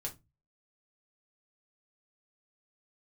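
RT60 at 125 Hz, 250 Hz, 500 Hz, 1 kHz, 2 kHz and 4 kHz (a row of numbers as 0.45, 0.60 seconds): 0.50, 0.35, 0.25, 0.20, 0.20, 0.15 seconds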